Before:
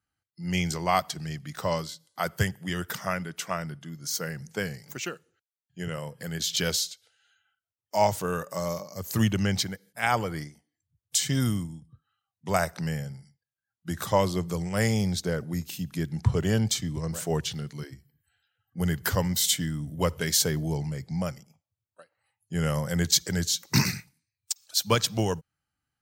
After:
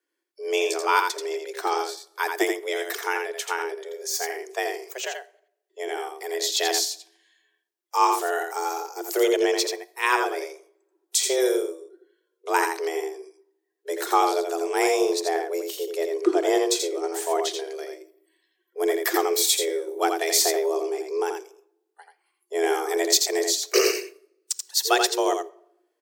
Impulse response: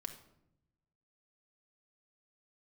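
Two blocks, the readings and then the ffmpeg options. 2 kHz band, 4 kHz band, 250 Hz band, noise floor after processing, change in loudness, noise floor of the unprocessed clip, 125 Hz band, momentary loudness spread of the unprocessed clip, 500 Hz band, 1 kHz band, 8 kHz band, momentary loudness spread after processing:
+5.0 dB, +3.0 dB, -1.0 dB, -78 dBFS, +4.0 dB, under -85 dBFS, under -40 dB, 13 LU, +8.0 dB, +7.0 dB, +4.0 dB, 12 LU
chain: -filter_complex "[0:a]afreqshift=250,aecho=1:1:84:0.531,asplit=2[a][b];[1:a]atrim=start_sample=2205[c];[b][c]afir=irnorm=-1:irlink=0,volume=-6dB[d];[a][d]amix=inputs=2:normalize=0"

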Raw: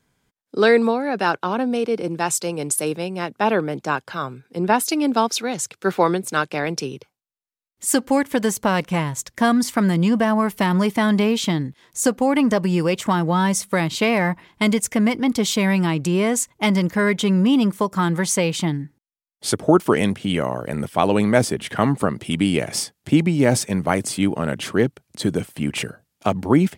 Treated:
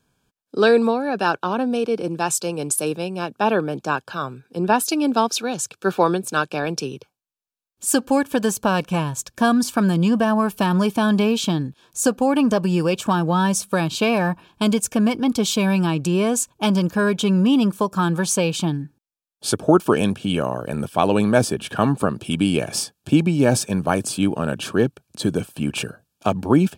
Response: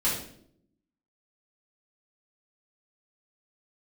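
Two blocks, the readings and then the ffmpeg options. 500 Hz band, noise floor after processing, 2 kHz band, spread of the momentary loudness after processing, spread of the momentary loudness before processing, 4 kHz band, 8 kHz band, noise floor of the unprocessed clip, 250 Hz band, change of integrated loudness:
0.0 dB, -78 dBFS, -2.0 dB, 8 LU, 8 LU, 0.0 dB, 0.0 dB, -78 dBFS, 0.0 dB, 0.0 dB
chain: -af "asuperstop=centerf=2000:order=8:qfactor=4.5"

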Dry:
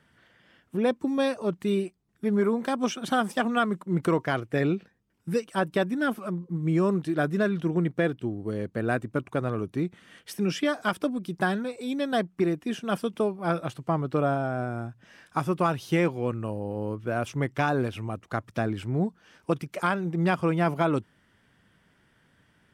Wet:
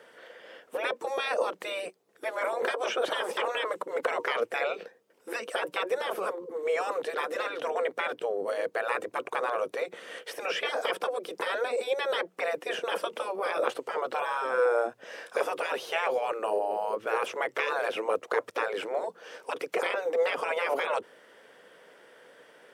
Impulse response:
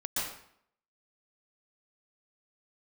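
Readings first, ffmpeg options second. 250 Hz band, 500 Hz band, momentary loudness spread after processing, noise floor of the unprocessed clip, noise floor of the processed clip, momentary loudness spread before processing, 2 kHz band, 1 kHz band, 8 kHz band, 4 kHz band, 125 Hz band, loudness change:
-19.5 dB, 0.0 dB, 7 LU, -66 dBFS, -61 dBFS, 7 LU, +1.0 dB, -0.5 dB, -1.5 dB, +2.5 dB, under -35 dB, -2.5 dB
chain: -filter_complex "[0:a]acrossover=split=2800[a][b];[b]acompressor=threshold=-53dB:ratio=4:attack=1:release=60[c];[a][c]amix=inputs=2:normalize=0,afftfilt=real='re*lt(hypot(re,im),0.0794)':imag='im*lt(hypot(re,im),0.0794)':win_size=1024:overlap=0.75,highpass=f=490:t=q:w=4.9,volume=8.5dB"

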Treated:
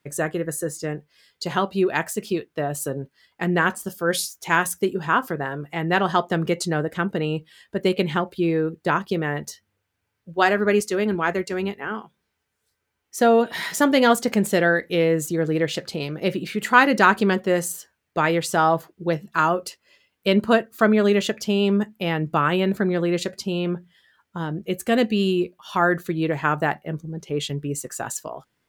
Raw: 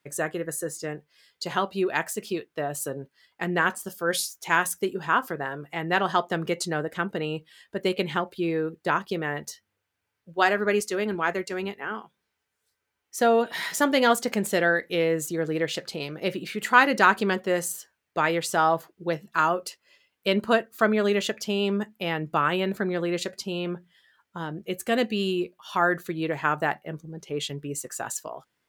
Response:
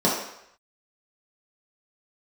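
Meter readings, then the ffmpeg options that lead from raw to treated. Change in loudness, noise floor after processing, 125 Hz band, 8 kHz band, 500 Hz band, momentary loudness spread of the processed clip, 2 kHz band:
+3.5 dB, -77 dBFS, +7.5 dB, +2.0 dB, +4.0 dB, 12 LU, +2.0 dB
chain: -af "lowshelf=f=290:g=7.5,volume=2dB"

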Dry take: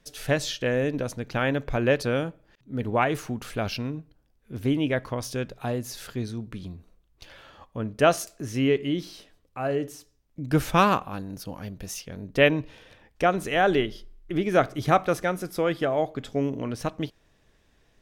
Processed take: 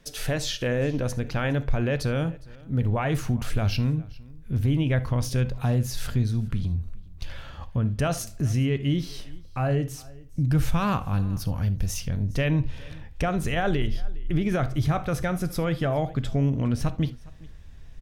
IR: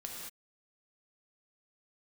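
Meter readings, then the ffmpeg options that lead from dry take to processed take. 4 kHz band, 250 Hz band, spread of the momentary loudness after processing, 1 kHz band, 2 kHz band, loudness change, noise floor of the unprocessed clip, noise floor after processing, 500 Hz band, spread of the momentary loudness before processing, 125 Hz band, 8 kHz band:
-1.5 dB, +0.5 dB, 10 LU, -6.0 dB, -4.5 dB, 0.0 dB, -65 dBFS, -44 dBFS, -5.0 dB, 14 LU, +8.0 dB, +1.0 dB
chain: -filter_complex "[0:a]asubboost=boost=5.5:cutoff=140,acompressor=threshold=-35dB:ratio=1.5,alimiter=limit=-22.5dB:level=0:latency=1:release=15,aecho=1:1:411:0.0708,asplit=2[a][b];[1:a]atrim=start_sample=2205,afade=t=out:st=0.13:d=0.01,atrim=end_sample=6174,lowshelf=f=390:g=6.5[c];[b][c]afir=irnorm=-1:irlink=0,volume=-5dB[d];[a][d]amix=inputs=2:normalize=0,volume=2.5dB"

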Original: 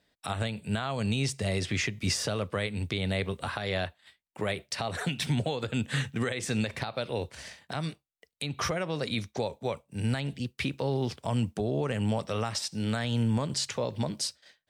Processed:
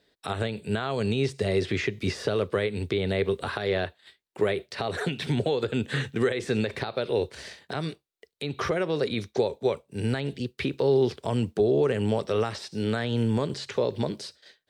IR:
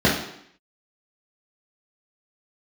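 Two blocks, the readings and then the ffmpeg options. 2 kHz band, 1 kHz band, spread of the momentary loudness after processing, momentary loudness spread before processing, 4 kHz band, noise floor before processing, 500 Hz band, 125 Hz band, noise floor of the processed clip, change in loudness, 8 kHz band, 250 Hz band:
+1.5 dB, +2.0 dB, 8 LU, 6 LU, -1.0 dB, -79 dBFS, +8.0 dB, +0.5 dB, -75 dBFS, +3.5 dB, -8.5 dB, +3.0 dB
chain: -filter_complex "[0:a]acrossover=split=2800[a][b];[b]acompressor=threshold=-43dB:ratio=4:attack=1:release=60[c];[a][c]amix=inputs=2:normalize=0,equalizer=f=400:t=o:w=0.67:g=12,equalizer=f=1.6k:t=o:w=0.67:g=3,equalizer=f=4k:t=o:w=0.67:g=6"

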